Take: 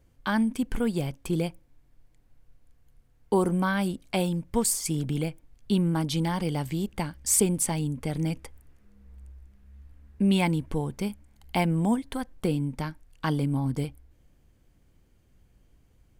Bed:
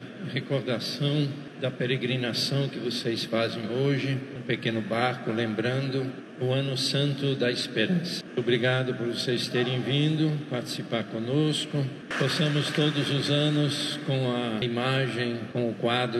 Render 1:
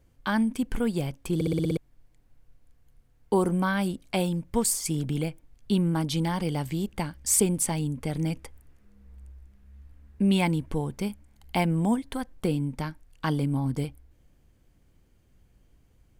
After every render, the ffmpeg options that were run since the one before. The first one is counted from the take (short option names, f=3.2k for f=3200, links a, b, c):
-filter_complex "[0:a]asplit=8[a][b][c][d][e][f][g][h];[a]atrim=end=1.412[i];[b]atrim=start=1.348:end=1.412[j];[c]atrim=start=1.348:end=1.412[k];[d]atrim=start=1.348:end=1.412[l];[e]atrim=start=1.348:end=1.412[m];[f]atrim=start=1.348:end=1.412[n];[g]atrim=start=1.348:end=1.412[o];[h]atrim=start=1.768[p];[i][j]acrossfade=d=0.004:c1=hsin:c2=hsin[q];[q][k]acrossfade=d=0.004:c1=hsin:c2=hsin[r];[r][l]acrossfade=d=0.004:c1=hsin:c2=hsin[s];[s][m]acrossfade=d=0.004:c1=hsin:c2=hsin[t];[t][n]acrossfade=d=0.004:c1=hsin:c2=hsin[u];[u][o]acrossfade=d=0.004:c1=hsin:c2=hsin[v];[v][p]acrossfade=d=0.004:c1=hsin:c2=hsin"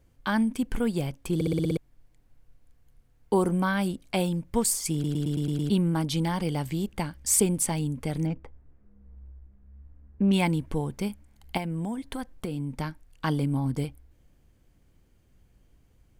-filter_complex "[0:a]asplit=3[a][b][c];[a]afade=t=out:st=8.25:d=0.02[d];[b]adynamicsmooth=sensitivity=2:basefreq=1.3k,afade=t=in:st=8.25:d=0.02,afade=t=out:st=10.32:d=0.02[e];[c]afade=t=in:st=10.32:d=0.02[f];[d][e][f]amix=inputs=3:normalize=0,asettb=1/sr,asplit=3[g][h][i];[g]atrim=end=11.574[j];[h]atrim=start=11.57:end=12.8,asetpts=PTS-STARTPTS,afade=t=in:d=0.004:c=qsin,afade=t=out:st=1.226:d=0.004:c=qsin,acompressor=threshold=-27dB:ratio=10:attack=3.2:release=140:knee=1:detection=peak[k];[i]atrim=start=12.796[l];[j][k]acrossfade=d=0.004:c1=hsin:c2=qsin[m];[m][l]acrossfade=d=0.004:c1=qsin:c2=hsin,asplit=8[n][o][p][q][r][s][t][u];[n]atrim=end=5.042[v];[o]atrim=start=4.928:end=5.042[w];[p]atrim=start=4.928:end=5.042[x];[q]atrim=start=4.928:end=5.042[y];[r]atrim=start=4.928:end=5.042[z];[s]atrim=start=4.928:end=5.042[aa];[t]atrim=start=4.928:end=5.042[ab];[u]atrim=start=5.698[ac];[v][w]acrossfade=d=0.004:c1=hsin:c2=hsin[ad];[ad][x]acrossfade=d=0.004:c1=hsin:c2=hsin[ae];[ae][y]acrossfade=d=0.004:c1=hsin:c2=hsin[af];[af][z]acrossfade=d=0.004:c1=hsin:c2=hsin[ag];[ag][aa]acrossfade=d=0.004:c1=hsin:c2=hsin[ah];[ah][ab]acrossfade=d=0.004:c1=hsin:c2=hsin[ai];[ai][ac]acrossfade=d=0.004:c1=hsin:c2=hsin"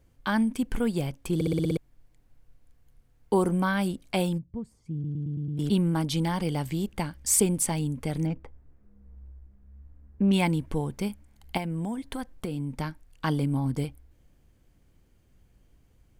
-filter_complex "[0:a]asplit=3[a][b][c];[a]afade=t=out:st=4.37:d=0.02[d];[b]bandpass=f=110:t=q:w=1.3,afade=t=in:st=4.37:d=0.02,afade=t=out:st=5.57:d=0.02[e];[c]afade=t=in:st=5.57:d=0.02[f];[d][e][f]amix=inputs=3:normalize=0"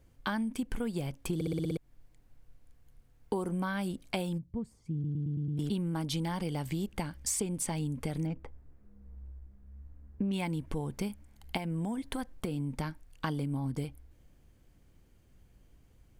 -filter_complex "[0:a]acrossover=split=7700[a][b];[b]alimiter=limit=-24dB:level=0:latency=1:release=330[c];[a][c]amix=inputs=2:normalize=0,acompressor=threshold=-30dB:ratio=6"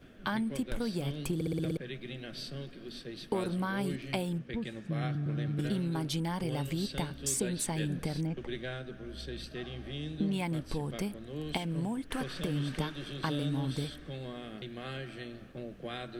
-filter_complex "[1:a]volume=-15dB[a];[0:a][a]amix=inputs=2:normalize=0"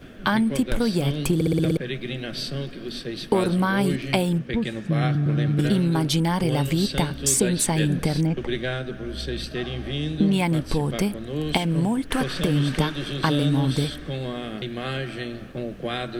-af "volume=11.5dB"